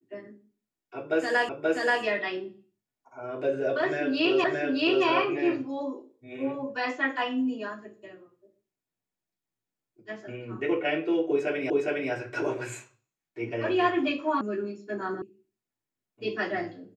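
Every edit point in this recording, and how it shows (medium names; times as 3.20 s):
1.49 s: repeat of the last 0.53 s
4.44 s: repeat of the last 0.62 s
11.70 s: repeat of the last 0.41 s
14.41 s: sound stops dead
15.22 s: sound stops dead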